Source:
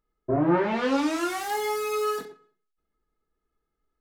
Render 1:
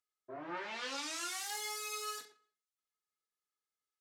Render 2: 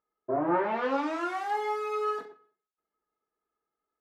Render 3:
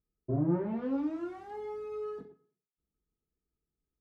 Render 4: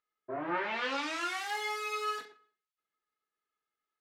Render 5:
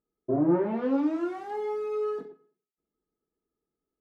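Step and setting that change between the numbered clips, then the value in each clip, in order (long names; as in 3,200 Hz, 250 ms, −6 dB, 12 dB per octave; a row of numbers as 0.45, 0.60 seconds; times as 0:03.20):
resonant band-pass, frequency: 6,600, 900, 110, 2,600, 290 Hertz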